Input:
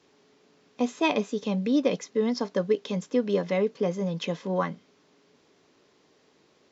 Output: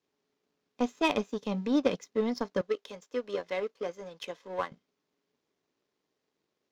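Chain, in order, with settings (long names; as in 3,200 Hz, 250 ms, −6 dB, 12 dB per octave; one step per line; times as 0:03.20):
0:02.61–0:04.72: high-pass filter 430 Hz 12 dB per octave
power curve on the samples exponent 1.4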